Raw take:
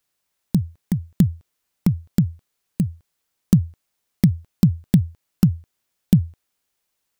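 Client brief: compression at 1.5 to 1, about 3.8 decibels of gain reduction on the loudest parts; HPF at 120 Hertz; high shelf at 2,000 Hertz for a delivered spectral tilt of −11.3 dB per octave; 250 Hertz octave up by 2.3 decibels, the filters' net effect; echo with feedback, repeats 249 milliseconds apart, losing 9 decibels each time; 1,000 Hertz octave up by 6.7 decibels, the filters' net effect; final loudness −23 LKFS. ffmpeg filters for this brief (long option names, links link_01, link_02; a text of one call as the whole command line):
ffmpeg -i in.wav -af "highpass=120,equalizer=frequency=250:width_type=o:gain=4.5,equalizer=frequency=1000:width_type=o:gain=7.5,highshelf=frequency=2000:gain=3.5,acompressor=threshold=-18dB:ratio=1.5,aecho=1:1:249|498|747|996:0.355|0.124|0.0435|0.0152,volume=1.5dB" out.wav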